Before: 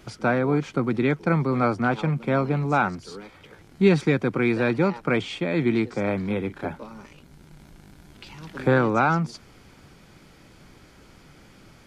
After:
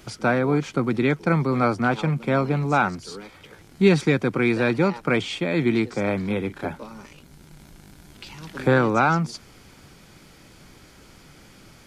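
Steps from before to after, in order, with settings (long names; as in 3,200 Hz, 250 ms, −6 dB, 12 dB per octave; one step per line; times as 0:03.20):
high-shelf EQ 4,000 Hz +6.5 dB
level +1 dB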